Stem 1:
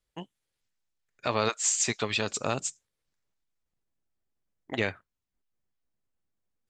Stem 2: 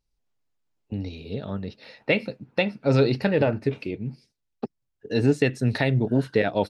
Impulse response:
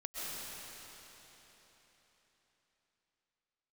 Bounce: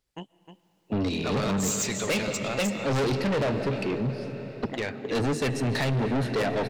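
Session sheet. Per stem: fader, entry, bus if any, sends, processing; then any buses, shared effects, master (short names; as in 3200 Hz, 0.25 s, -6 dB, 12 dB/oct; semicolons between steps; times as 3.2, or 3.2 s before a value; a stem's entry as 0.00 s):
+1.0 dB, 0.00 s, send -21 dB, echo send -10.5 dB, dry
-1.5 dB, 0.00 s, send -12.5 dB, no echo send, HPF 110 Hz 24 dB/oct; AGC gain up to 13.5 dB; overloaded stage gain 7.5 dB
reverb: on, RT60 4.1 s, pre-delay 90 ms
echo: echo 0.309 s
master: soft clip -23 dBFS, distortion -5 dB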